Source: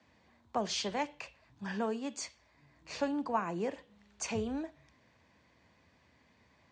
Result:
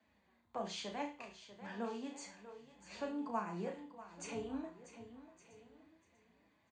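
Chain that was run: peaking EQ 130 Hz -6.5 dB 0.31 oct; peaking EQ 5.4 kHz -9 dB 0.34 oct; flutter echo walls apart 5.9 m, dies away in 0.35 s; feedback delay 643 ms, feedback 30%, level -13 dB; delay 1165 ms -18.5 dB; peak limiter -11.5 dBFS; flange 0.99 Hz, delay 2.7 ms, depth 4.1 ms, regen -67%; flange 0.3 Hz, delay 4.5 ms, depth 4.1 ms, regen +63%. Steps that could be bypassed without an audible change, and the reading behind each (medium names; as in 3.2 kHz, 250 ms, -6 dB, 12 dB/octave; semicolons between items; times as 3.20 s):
peak limiter -11.5 dBFS: peak at its input -17.0 dBFS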